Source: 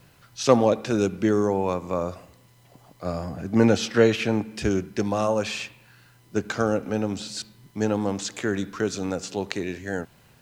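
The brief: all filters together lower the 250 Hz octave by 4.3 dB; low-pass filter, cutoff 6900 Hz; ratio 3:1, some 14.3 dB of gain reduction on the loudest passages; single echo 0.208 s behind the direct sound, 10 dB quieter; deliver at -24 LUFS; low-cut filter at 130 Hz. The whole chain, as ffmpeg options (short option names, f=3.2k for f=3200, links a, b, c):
-af "highpass=130,lowpass=6.9k,equalizer=f=250:t=o:g=-5,acompressor=threshold=-33dB:ratio=3,aecho=1:1:208:0.316,volume=11.5dB"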